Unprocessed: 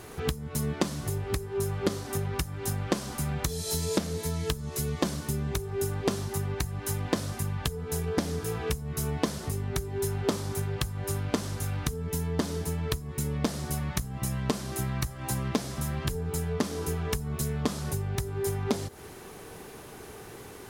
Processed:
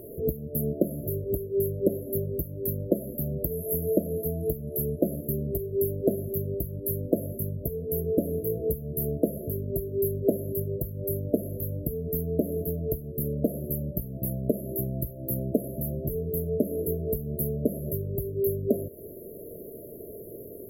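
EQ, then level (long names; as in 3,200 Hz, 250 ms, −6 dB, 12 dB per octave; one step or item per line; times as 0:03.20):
linear-phase brick-wall band-stop 680–11,000 Hz
low-shelf EQ 240 Hz −12 dB
+8.5 dB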